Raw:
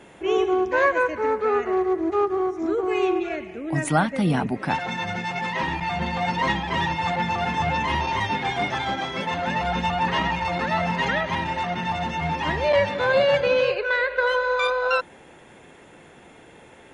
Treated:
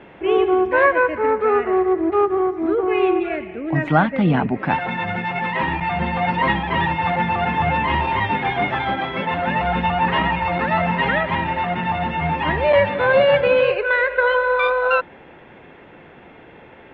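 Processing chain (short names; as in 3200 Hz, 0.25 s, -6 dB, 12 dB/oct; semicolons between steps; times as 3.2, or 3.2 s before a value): LPF 3000 Hz 24 dB/oct; gain +4.5 dB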